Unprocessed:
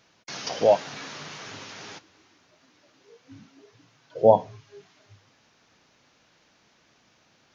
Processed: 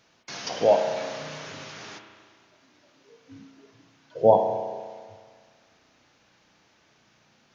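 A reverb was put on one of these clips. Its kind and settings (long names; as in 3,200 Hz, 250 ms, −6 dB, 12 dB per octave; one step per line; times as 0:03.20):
spring reverb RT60 1.7 s, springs 33 ms, chirp 80 ms, DRR 4.5 dB
level −1 dB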